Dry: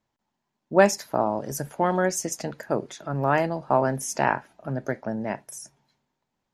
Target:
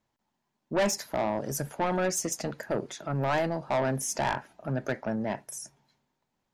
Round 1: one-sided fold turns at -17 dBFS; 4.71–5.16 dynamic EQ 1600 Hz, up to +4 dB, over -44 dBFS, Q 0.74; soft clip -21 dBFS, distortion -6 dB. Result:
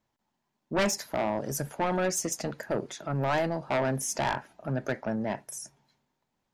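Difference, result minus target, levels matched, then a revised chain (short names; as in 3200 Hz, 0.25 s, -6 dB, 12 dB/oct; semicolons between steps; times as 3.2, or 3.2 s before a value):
one-sided fold: distortion +29 dB
one-sided fold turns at -6 dBFS; 4.71–5.16 dynamic EQ 1600 Hz, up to +4 dB, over -44 dBFS, Q 0.74; soft clip -21 dBFS, distortion -6 dB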